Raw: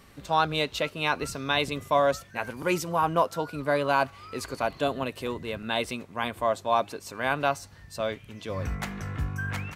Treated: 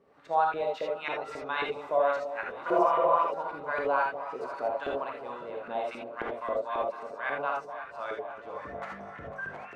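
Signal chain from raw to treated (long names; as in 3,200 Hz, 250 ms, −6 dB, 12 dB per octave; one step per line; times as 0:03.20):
on a send: delay that swaps between a low-pass and a high-pass 249 ms, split 930 Hz, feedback 82%, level −11.5 dB
on the sum: healed spectral selection 0:02.70–0:03.14, 440–3,900 Hz after
auto-filter band-pass saw up 3.7 Hz 400–1,900 Hz
reverb whose tail is shaped and stops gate 100 ms rising, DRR 0 dB
level −1 dB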